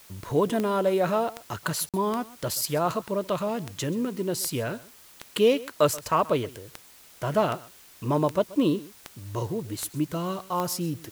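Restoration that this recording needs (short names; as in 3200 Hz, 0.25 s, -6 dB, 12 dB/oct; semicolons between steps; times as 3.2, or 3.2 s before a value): de-click; interpolate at 1.89, 47 ms; noise print and reduce 19 dB; inverse comb 0.13 s -20 dB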